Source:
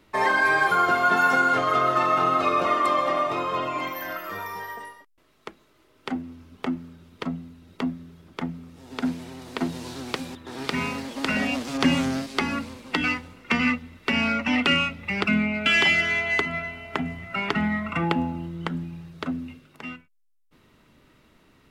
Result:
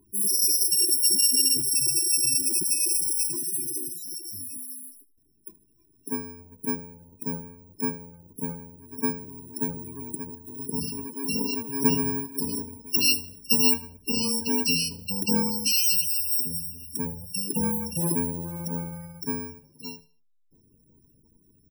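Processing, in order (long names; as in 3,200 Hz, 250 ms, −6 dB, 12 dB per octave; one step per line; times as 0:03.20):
samples in bit-reversed order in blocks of 64 samples
dynamic equaliser 8,500 Hz, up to +3 dB, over −42 dBFS, Q 7
spectral peaks only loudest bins 32
0:12.86–0:13.74: high shelf with overshoot 2,100 Hz +7 dB, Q 1.5
on a send: repeating echo 78 ms, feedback 34%, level −20 dB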